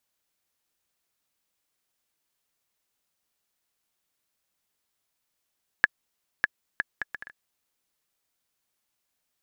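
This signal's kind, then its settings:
bouncing ball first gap 0.60 s, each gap 0.6, 1,700 Hz, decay 26 ms −3.5 dBFS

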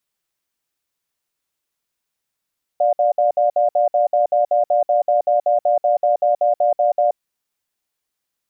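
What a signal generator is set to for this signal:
tone pair in a cadence 592 Hz, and 711 Hz, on 0.13 s, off 0.06 s, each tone −15.5 dBFS 4.32 s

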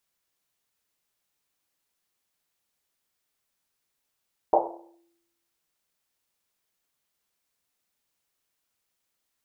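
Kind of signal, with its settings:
drum after Risset, pitch 340 Hz, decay 0.94 s, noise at 690 Hz, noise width 430 Hz, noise 80%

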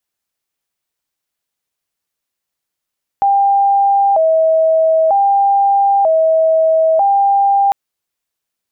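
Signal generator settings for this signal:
siren hi-lo 643–796 Hz 0.53 per second sine −8.5 dBFS 4.50 s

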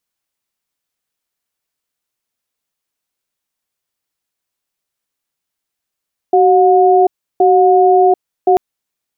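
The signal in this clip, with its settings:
tone pair in a cadence 377 Hz, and 722 Hz, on 0.74 s, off 0.33 s, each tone −9 dBFS 2.24 s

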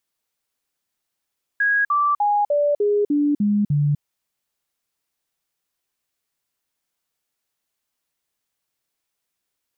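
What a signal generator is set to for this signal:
stepped sweep 1,650 Hz down, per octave 2, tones 8, 0.25 s, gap 0.05 s −15.5 dBFS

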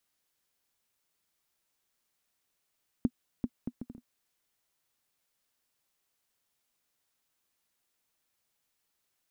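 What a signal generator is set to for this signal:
bouncing ball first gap 0.39 s, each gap 0.6, 243 Hz, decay 53 ms −15 dBFS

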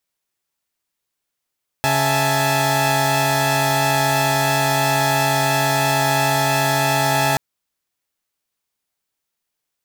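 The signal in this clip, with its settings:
held notes C#3/E5/G#5/A5 saw, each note −19 dBFS 5.53 s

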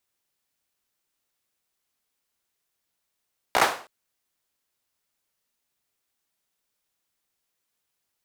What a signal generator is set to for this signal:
synth clap length 0.32 s, bursts 5, apart 16 ms, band 820 Hz, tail 0.40 s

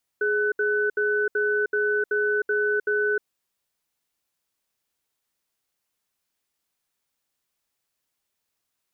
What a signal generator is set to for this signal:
tone pair in a cadence 418 Hz, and 1,500 Hz, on 0.31 s, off 0.07 s, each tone −23 dBFS 2.99 s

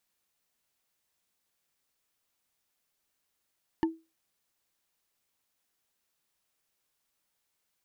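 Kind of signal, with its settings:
struck wood, lowest mode 325 Hz, decay 0.26 s, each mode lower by 6 dB, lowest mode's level −20 dB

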